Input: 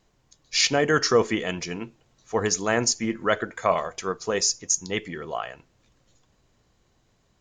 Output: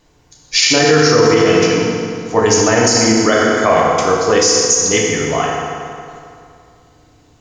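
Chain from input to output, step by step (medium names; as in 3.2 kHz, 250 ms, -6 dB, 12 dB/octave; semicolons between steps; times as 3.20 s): FDN reverb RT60 2.4 s, low-frequency decay 1.05×, high-frequency decay 0.75×, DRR -4 dB; loudness maximiser +10 dB; trim -1 dB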